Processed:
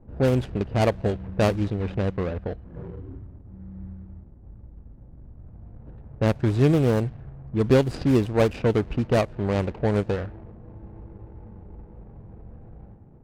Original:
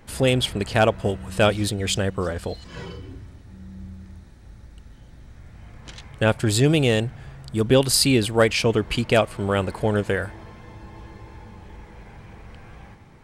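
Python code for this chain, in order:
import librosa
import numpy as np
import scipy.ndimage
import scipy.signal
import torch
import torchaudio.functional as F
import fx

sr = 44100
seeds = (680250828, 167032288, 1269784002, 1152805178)

y = scipy.ndimage.median_filter(x, 41, mode='constant')
y = fx.env_lowpass(y, sr, base_hz=890.0, full_db=-16.0)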